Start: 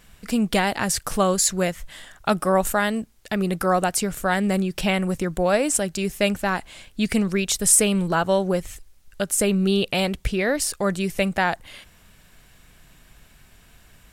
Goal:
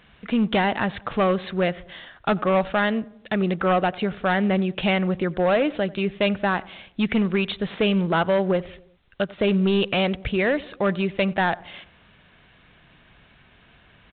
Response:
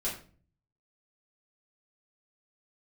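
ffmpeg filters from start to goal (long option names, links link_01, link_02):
-filter_complex "[0:a]highpass=frequency=120:poles=1,asoftclip=type=hard:threshold=-17dB,asplit=2[link_01][link_02];[link_02]adelay=91,lowpass=frequency=1300:poles=1,volume=-20dB,asplit=2[link_03][link_04];[link_04]adelay=91,lowpass=frequency=1300:poles=1,volume=0.55,asplit=2[link_05][link_06];[link_06]adelay=91,lowpass=frequency=1300:poles=1,volume=0.55,asplit=2[link_07][link_08];[link_08]adelay=91,lowpass=frequency=1300:poles=1,volume=0.55[link_09];[link_03][link_05][link_07][link_09]amix=inputs=4:normalize=0[link_10];[link_01][link_10]amix=inputs=2:normalize=0,volume=2dB" -ar 8000 -c:a pcm_alaw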